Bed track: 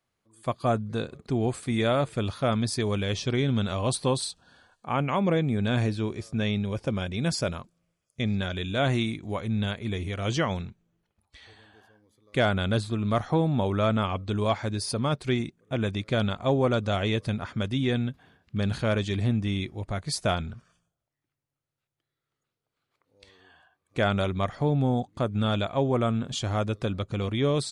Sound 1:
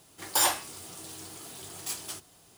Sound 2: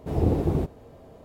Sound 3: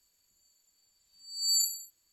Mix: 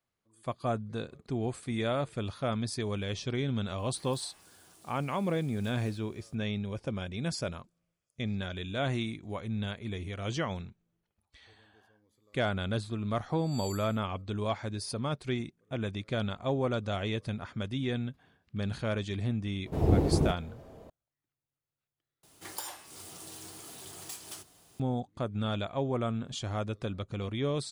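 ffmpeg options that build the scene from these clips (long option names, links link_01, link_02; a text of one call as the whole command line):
ffmpeg -i bed.wav -i cue0.wav -i cue1.wav -i cue2.wav -filter_complex "[1:a]asplit=2[link_01][link_02];[0:a]volume=-6.5dB[link_03];[link_01]acompressor=threshold=-42dB:ratio=6:attack=3.2:release=140:knee=1:detection=peak[link_04];[3:a]asoftclip=type=tanh:threshold=-18dB[link_05];[link_02]acompressor=threshold=-38dB:ratio=6:attack=23:release=385:knee=1:detection=peak[link_06];[link_03]asplit=2[link_07][link_08];[link_07]atrim=end=22.234[link_09];[link_06]atrim=end=2.57,asetpts=PTS-STARTPTS,volume=-2.5dB[link_10];[link_08]atrim=start=24.796[link_11];[link_04]atrim=end=2.57,asetpts=PTS-STARTPTS,volume=-12.5dB,afade=type=in:duration=0.004:curve=hsin,afade=type=out:start_time=2.566:duration=0.004:curve=hsin,adelay=3780[link_12];[link_05]atrim=end=2.12,asetpts=PTS-STARTPTS,volume=-16dB,afade=type=in:duration=0.004:curve=hsin,afade=type=out:start_time=2.116:duration=0.004:curve=hsin,adelay=12100[link_13];[2:a]atrim=end=1.24,asetpts=PTS-STARTPTS,volume=-2dB,afade=type=in:duration=0.004:curve=hsin,afade=type=out:start_time=1.236:duration=0.004:curve=hsin,adelay=19660[link_14];[link_09][link_10]acrossfade=duration=0.004:curve1=hsin:curve2=hsin[link_15];[link_15][link_11]acrossfade=duration=0.004:curve1=hsin:curve2=hsin[link_16];[link_16][link_12][link_13][link_14]amix=inputs=4:normalize=0" out.wav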